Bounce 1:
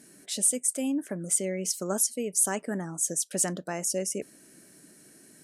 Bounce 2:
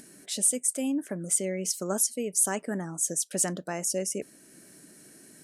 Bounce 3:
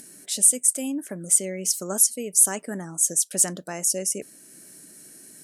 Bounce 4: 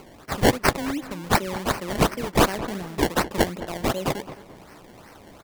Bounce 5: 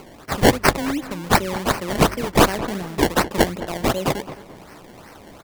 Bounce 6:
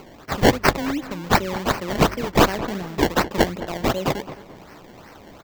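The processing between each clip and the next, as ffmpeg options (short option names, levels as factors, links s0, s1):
-af "acompressor=mode=upward:threshold=0.00447:ratio=2.5"
-af "aemphasis=mode=production:type=cd"
-filter_complex "[0:a]acrusher=samples=24:mix=1:aa=0.000001:lfo=1:lforange=24:lforate=2.7,asplit=2[s0][s1];[s1]adelay=215,lowpass=f=2400:p=1,volume=0.211,asplit=2[s2][s3];[s3]adelay=215,lowpass=f=2400:p=1,volume=0.34,asplit=2[s4][s5];[s5]adelay=215,lowpass=f=2400:p=1,volume=0.34[s6];[s0][s2][s4][s6]amix=inputs=4:normalize=0"
-af "bandreject=f=50:t=h:w=6,bandreject=f=100:t=h:w=6,volume=1.58"
-af "equalizer=f=10000:w=2.3:g=-12.5,volume=0.891"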